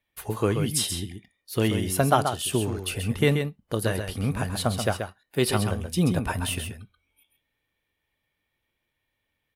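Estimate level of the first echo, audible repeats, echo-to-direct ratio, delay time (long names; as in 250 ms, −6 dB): −7.0 dB, 1, −7.0 dB, 132 ms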